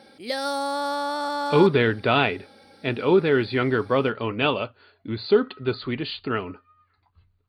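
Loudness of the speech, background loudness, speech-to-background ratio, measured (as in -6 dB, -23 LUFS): -23.0 LUFS, -27.5 LUFS, 4.5 dB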